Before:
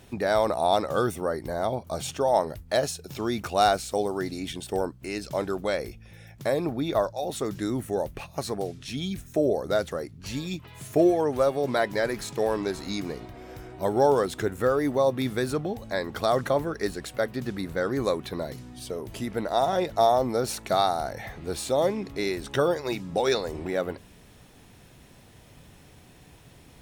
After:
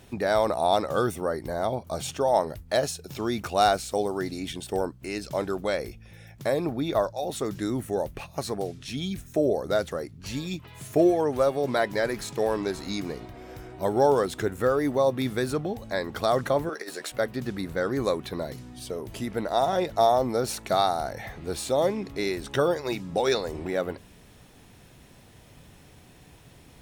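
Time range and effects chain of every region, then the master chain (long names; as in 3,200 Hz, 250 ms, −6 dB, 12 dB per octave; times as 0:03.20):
0:16.69–0:17.12: high-pass filter 430 Hz + double-tracking delay 13 ms −4.5 dB + compressor whose output falls as the input rises −33 dBFS, ratio −0.5
whole clip: no processing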